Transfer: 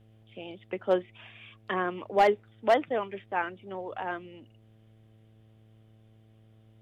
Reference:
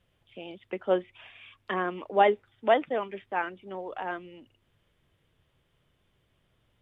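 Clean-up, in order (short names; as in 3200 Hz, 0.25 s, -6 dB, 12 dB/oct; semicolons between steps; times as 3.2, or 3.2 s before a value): clip repair -14.5 dBFS; de-hum 109.7 Hz, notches 7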